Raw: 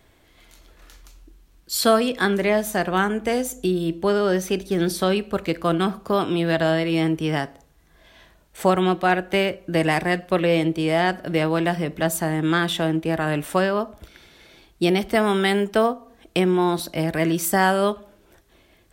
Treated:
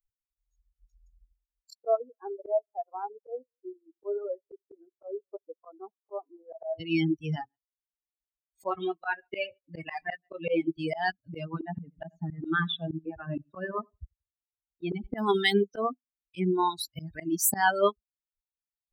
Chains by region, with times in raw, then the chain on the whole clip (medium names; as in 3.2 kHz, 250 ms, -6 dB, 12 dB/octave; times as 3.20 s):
1.73–6.80 s: Butterworth band-pass 630 Hz, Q 1 + delay 207 ms -21.5 dB
7.36–10.77 s: chunks repeated in reverse 101 ms, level -13.5 dB + tone controls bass -5 dB, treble -6 dB + doubling 24 ms -7 dB
11.45–15.18 s: distance through air 230 m + feedback delay 88 ms, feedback 41%, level -8 dB
whole clip: expander on every frequency bin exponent 3; reverb removal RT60 1.3 s; slow attack 164 ms; trim +4 dB